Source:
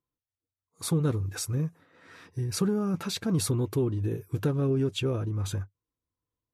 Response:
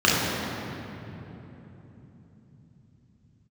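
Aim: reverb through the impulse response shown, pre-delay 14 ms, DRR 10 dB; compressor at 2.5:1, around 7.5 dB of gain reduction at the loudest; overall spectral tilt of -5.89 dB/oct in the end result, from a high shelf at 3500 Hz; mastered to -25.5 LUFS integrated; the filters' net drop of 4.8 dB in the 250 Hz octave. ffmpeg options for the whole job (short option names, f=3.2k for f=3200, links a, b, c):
-filter_complex "[0:a]equalizer=f=250:t=o:g=-7.5,highshelf=f=3.5k:g=-6.5,acompressor=threshold=-36dB:ratio=2.5,asplit=2[a][b];[1:a]atrim=start_sample=2205,adelay=14[c];[b][c]afir=irnorm=-1:irlink=0,volume=-31.5dB[d];[a][d]amix=inputs=2:normalize=0,volume=11.5dB"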